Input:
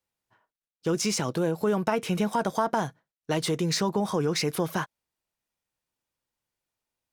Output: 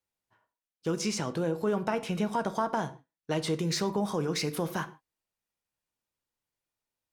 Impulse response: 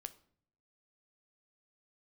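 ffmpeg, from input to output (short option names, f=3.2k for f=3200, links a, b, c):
-filter_complex "[0:a]asettb=1/sr,asplit=3[a][b][c];[a]atrim=end=0.994[d];[b]atrim=start=0.99:end=3.55,asetpts=PTS-STARTPTS,afade=t=in:d=0.004:c=qsin,afade=t=out:st=2.556:d=0.004:c=qsin,highshelf=f=11k:g=-10.5[e];[c]atrim=start=3.546[f];[d][e]acrossfade=d=0.004:c1=hsin:c2=qsin[g];[g][f]acrossfade=d=0.004:c1=qsin:c2=hsin[h];[1:a]atrim=start_sample=2205,afade=t=out:st=0.18:d=0.01,atrim=end_sample=8379,asetrate=37485,aresample=44100[i];[h][i]afir=irnorm=-1:irlink=0"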